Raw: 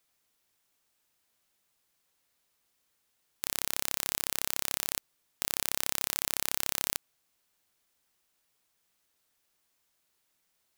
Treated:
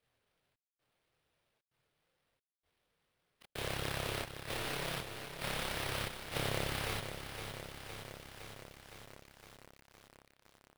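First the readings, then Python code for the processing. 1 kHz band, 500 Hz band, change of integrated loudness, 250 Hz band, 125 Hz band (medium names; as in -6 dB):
+1.0 dB, +6.0 dB, -8.5 dB, +4.0 dB, +11.0 dB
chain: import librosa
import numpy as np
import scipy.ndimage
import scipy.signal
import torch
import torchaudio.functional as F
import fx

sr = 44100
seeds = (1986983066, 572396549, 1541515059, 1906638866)

y = fx.freq_compress(x, sr, knee_hz=2600.0, ratio=1.5)
y = fx.graphic_eq(y, sr, hz=(125, 250, 500, 1000, 2000, 4000, 8000), db=(9, -9, 6, -9, -5, -8, -11))
y = fx.step_gate(y, sr, bpm=114, pattern='xxxx..xxxxxx.x', floor_db=-60.0, edge_ms=4.5)
y = fx.chorus_voices(y, sr, voices=2, hz=0.39, base_ms=26, depth_ms=3.9, mix_pct=55)
y = fx.sample_hold(y, sr, seeds[0], rate_hz=6900.0, jitter_pct=20)
y = fx.echo_crushed(y, sr, ms=512, feedback_pct=80, bits=10, wet_db=-8.0)
y = F.gain(torch.from_numpy(y), 6.5).numpy()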